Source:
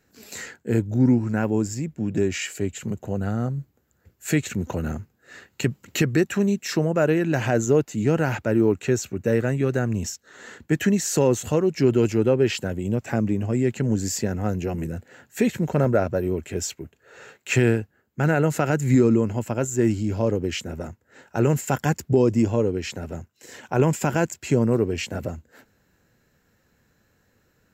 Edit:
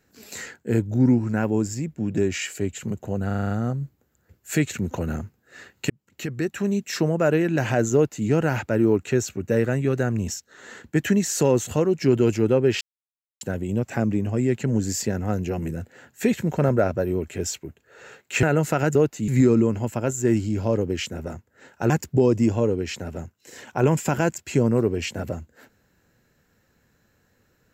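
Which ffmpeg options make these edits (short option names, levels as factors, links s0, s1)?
-filter_complex "[0:a]asplit=13[s0][s1][s2][s3][s4][s5][s6][s7][s8][s9][s10][s11][s12];[s0]atrim=end=3.302[s13];[s1]atrim=start=3.258:end=3.302[s14];[s2]atrim=start=3.258:end=3.302[s15];[s3]atrim=start=3.258:end=3.302[s16];[s4]atrim=start=3.258:end=3.302[s17];[s5]atrim=start=3.258:end=3.302[s18];[s6]atrim=start=3.258:end=5.66,asetpts=PTS-STARTPTS,afade=t=out:st=2.398:d=0.004:c=hsin[s19];[s7]atrim=start=5.66:end=12.57,asetpts=PTS-STARTPTS,afade=t=in:d=1.05,afade=t=out:st=6.906:d=0.004:c=hsin,apad=pad_dur=0.6[s20];[s8]atrim=start=12.57:end=17.592,asetpts=PTS-STARTPTS,afade=t=in:d=0.004:c=hsin[s21];[s9]atrim=start=18.298:end=18.822[s22];[s10]atrim=start=7.698:end=8.032[s23];[s11]atrim=start=18.818:end=21.442[s24];[s12]atrim=start=21.858[s25];[s13][s14]acrossfade=d=0.004:c1=hsin:c2=hsin[s26];[s26][s15]acrossfade=d=0.004:c1=hsin:c2=hsin[s27];[s27][s16]acrossfade=d=0.004:c1=hsin:c2=hsin[s28];[s28][s17]acrossfade=d=0.004:c1=hsin:c2=hsin[s29];[s29][s18]acrossfade=d=0.004:c1=hsin:c2=hsin[s30];[s19][s20][s21]concat=n=3:v=0:a=1[s31];[s30][s31]acrossfade=d=0.004:c1=hsin:c2=hsin[s32];[s32][s22]acrossfade=d=0.004:c1=hsin:c2=hsin[s33];[s33][s23]acrossfade=d=0.004:c1=hsin:c2=hsin[s34];[s34][s24]acrossfade=d=0.004:c1=hsin:c2=hsin[s35];[s35][s25]acrossfade=d=0.004:c1=hsin:c2=hsin"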